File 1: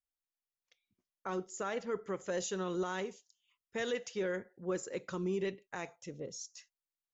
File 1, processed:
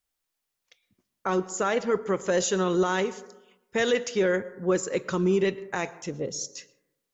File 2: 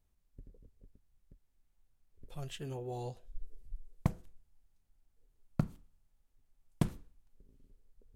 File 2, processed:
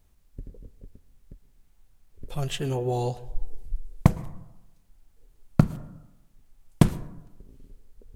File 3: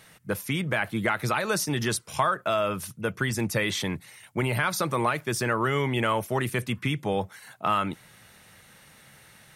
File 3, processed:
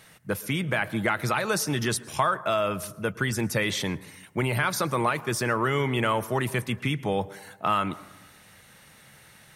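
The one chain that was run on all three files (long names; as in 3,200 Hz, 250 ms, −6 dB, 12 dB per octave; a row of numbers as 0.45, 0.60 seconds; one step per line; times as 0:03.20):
dense smooth reverb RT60 0.97 s, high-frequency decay 0.25×, pre-delay 100 ms, DRR 18 dB
loudness normalisation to −27 LKFS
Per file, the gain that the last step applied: +11.5, +13.5, +0.5 decibels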